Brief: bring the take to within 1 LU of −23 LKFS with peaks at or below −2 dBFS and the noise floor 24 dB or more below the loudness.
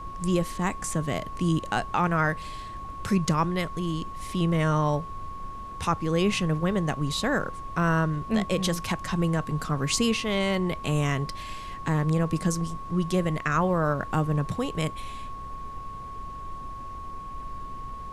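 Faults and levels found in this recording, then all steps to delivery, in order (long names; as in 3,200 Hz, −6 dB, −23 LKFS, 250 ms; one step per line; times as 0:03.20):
interfering tone 1,100 Hz; level of the tone −37 dBFS; background noise floor −38 dBFS; target noise floor −51 dBFS; integrated loudness −27.0 LKFS; sample peak −12.5 dBFS; target loudness −23.0 LKFS
→ notch filter 1,100 Hz, Q 30
noise reduction from a noise print 13 dB
level +4 dB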